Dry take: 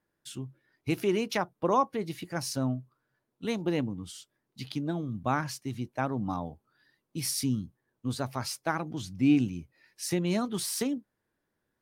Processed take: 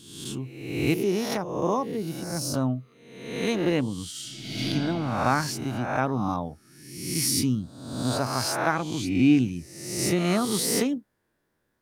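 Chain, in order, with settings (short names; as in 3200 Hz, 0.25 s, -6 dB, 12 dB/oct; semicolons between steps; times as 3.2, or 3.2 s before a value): spectral swells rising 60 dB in 0.95 s; 0.94–2.54 bell 1600 Hz -12 dB 2.7 oct; 4.11–4.61 reverb throw, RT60 2.9 s, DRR -7.5 dB; gain +3.5 dB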